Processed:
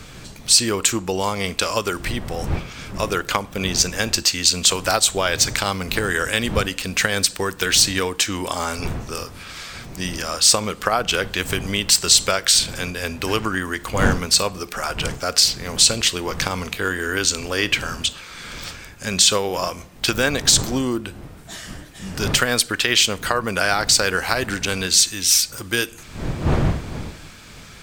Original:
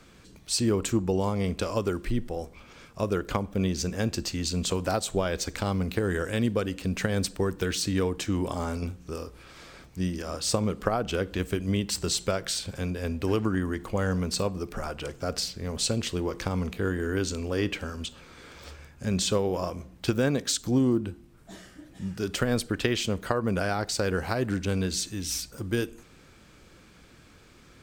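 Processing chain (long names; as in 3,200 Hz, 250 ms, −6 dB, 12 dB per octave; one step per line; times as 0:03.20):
wind on the microphone 140 Hz −30 dBFS
tilt shelving filter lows −9.5 dB, about 700 Hz
boost into a limiter +8 dB
level −1 dB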